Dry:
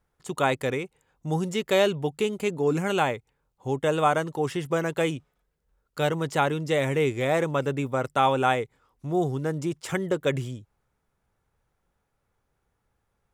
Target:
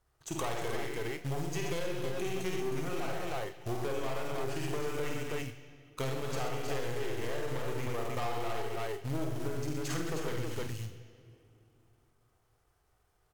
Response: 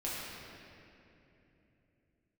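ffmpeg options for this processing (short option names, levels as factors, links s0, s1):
-filter_complex "[0:a]equalizer=f=240:w=3.8:g=-15,acrusher=bits=3:mode=log:mix=0:aa=0.000001,aeval=exprs='(tanh(22.4*val(0)+0.5)-tanh(0.5))/22.4':c=same,asplit=2[s0][s1];[s1]adelay=40,volume=0.282[s2];[s0][s2]amix=inputs=2:normalize=0,aecho=1:1:53|73|81|125|226|318:0.668|0.133|0.355|0.531|0.335|0.631,acompressor=threshold=0.0282:ratio=12,asetrate=39289,aresample=44100,atempo=1.12246,asplit=2[s3][s4];[s4]highshelf=f=2100:g=11.5[s5];[1:a]atrim=start_sample=2205,asetrate=52920,aresample=44100[s6];[s5][s6]afir=irnorm=-1:irlink=0,volume=0.141[s7];[s3][s7]amix=inputs=2:normalize=0"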